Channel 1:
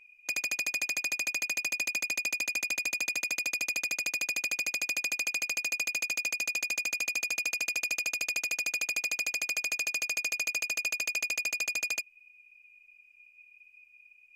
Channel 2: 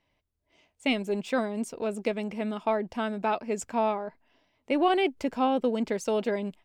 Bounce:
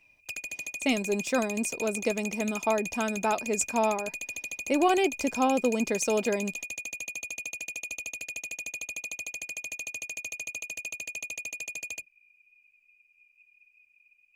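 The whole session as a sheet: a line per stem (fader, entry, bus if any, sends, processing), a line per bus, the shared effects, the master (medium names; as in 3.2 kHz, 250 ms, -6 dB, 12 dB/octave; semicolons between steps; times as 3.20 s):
-2.5 dB, 0.00 s, no send, octave divider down 2 oct, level -3 dB; touch-sensitive flanger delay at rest 10.9 ms, full sweep at -29.5 dBFS
+0.5 dB, 0.00 s, no send, resonant high shelf 4.4 kHz +8 dB, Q 1.5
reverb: none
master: none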